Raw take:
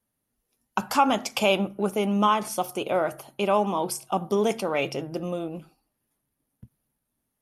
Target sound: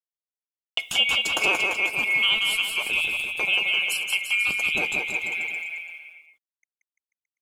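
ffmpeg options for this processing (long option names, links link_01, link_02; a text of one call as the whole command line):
ffmpeg -i in.wav -filter_complex "[0:a]afftfilt=real='real(if(lt(b,920),b+92*(1-2*mod(floor(b/92),2)),b),0)':imag='imag(if(lt(b,920),b+92*(1-2*mod(floor(b/92),2)),b),0)':win_size=2048:overlap=0.75,agate=range=-25dB:threshold=-39dB:ratio=16:detection=peak,asplit=2[link_01][link_02];[link_02]acompressor=threshold=-35dB:ratio=6,volume=0.5dB[link_03];[link_01][link_03]amix=inputs=2:normalize=0,acrusher=bits=8:mix=0:aa=0.5,aecho=1:1:180|342|487.8|619|737.1:0.631|0.398|0.251|0.158|0.1,volume=-3dB" out.wav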